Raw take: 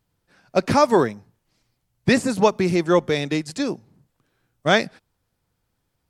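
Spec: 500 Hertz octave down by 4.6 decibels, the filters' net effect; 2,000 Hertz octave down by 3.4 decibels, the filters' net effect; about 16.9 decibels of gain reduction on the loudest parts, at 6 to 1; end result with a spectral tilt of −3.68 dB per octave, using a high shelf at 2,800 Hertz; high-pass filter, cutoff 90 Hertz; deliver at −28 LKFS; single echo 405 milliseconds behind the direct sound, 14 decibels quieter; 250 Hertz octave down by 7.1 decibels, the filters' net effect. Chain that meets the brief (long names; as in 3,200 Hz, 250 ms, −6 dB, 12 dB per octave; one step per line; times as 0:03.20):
high-pass filter 90 Hz
parametric band 250 Hz −9 dB
parametric band 500 Hz −3 dB
parametric band 2,000 Hz −6.5 dB
high-shelf EQ 2,800 Hz +6.5 dB
downward compressor 6 to 1, threshold −33 dBFS
single-tap delay 405 ms −14 dB
level +9.5 dB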